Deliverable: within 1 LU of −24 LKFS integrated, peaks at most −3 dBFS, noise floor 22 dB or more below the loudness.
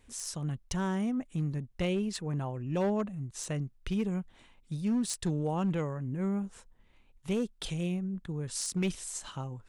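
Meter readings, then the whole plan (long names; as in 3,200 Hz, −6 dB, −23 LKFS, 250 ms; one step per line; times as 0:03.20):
share of clipped samples 1.2%; peaks flattened at −24.5 dBFS; integrated loudness −33.5 LKFS; sample peak −24.5 dBFS; target loudness −24.0 LKFS
→ clipped peaks rebuilt −24.5 dBFS
level +9.5 dB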